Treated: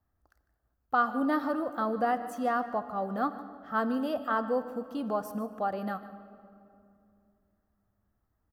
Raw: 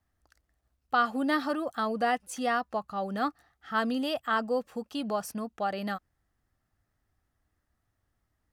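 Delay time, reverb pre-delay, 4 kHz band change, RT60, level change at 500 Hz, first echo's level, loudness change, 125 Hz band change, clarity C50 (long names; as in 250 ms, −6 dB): 151 ms, 10 ms, −11.0 dB, 2.6 s, +0.5 dB, −16.0 dB, −0.5 dB, can't be measured, 11.5 dB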